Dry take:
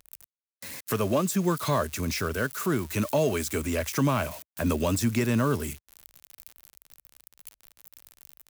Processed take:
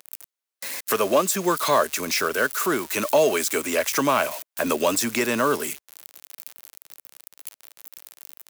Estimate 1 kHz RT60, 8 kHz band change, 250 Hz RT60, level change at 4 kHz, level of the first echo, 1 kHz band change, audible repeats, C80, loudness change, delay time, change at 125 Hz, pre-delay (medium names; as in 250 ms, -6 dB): no reverb, +8.0 dB, no reverb, +8.0 dB, no echo, +8.0 dB, no echo, no reverb, +4.5 dB, no echo, -11.0 dB, no reverb